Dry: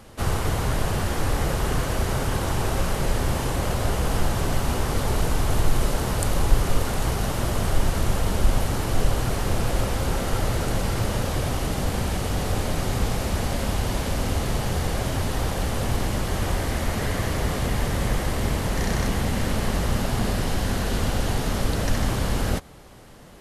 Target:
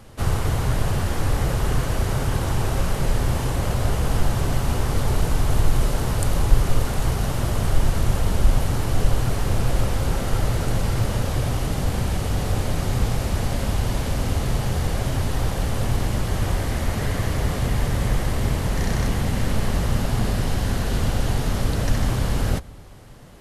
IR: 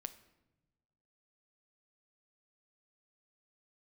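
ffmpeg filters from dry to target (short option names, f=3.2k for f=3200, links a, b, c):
-filter_complex "[0:a]equalizer=f=120:t=o:w=0.77:g=3.5,asplit=2[a][b];[1:a]atrim=start_sample=2205,lowshelf=f=150:g=11[c];[b][c]afir=irnorm=-1:irlink=0,volume=-6dB[d];[a][d]amix=inputs=2:normalize=0,volume=-3.5dB"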